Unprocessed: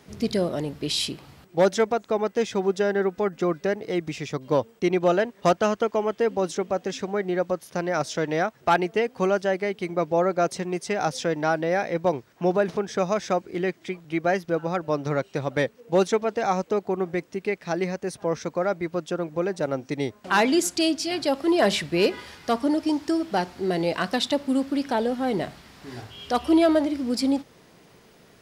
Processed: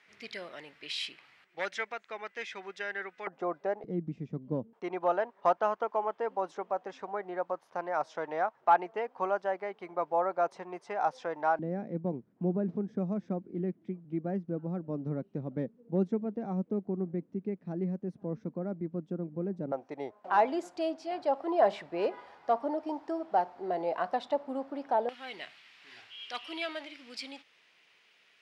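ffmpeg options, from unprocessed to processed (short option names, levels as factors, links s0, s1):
-af "asetnsamples=n=441:p=0,asendcmd='3.27 bandpass f 790;3.84 bandpass f 200;4.73 bandpass f 920;11.59 bandpass f 210;19.72 bandpass f 760;25.09 bandpass f 2600',bandpass=f=2100:t=q:w=2.3:csg=0"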